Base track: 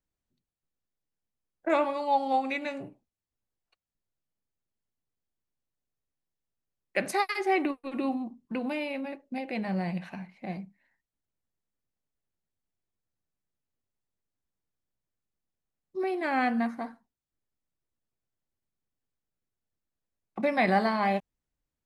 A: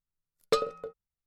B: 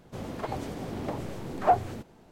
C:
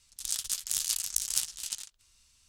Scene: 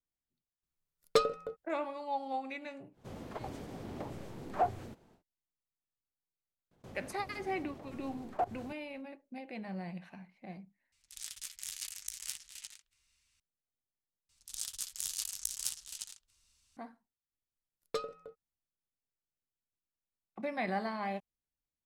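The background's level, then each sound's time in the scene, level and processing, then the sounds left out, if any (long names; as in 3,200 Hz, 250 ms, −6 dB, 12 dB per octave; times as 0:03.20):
base track −10.5 dB
0:00.63: mix in A −1 dB
0:02.92: mix in B −8.5 dB, fades 0.10 s
0:06.71: mix in B −7.5 dB + output level in coarse steps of 21 dB
0:10.92: overwrite with C −12.5 dB + parametric band 2,100 Hz +10 dB 0.87 octaves
0:14.29: overwrite with C −7.5 dB
0:17.42: mix in A −10.5 dB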